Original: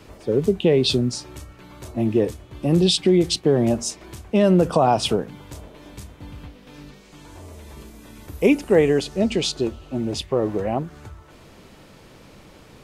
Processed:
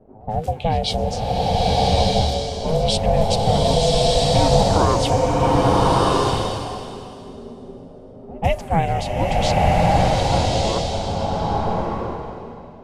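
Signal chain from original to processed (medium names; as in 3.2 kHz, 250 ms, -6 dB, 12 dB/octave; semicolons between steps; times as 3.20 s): on a send: reverse echo 140 ms -21 dB; on the sum: level-controlled noise filter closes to 330 Hz, open at -17.5 dBFS; ring modulator 320 Hz; swelling reverb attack 1250 ms, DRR -5.5 dB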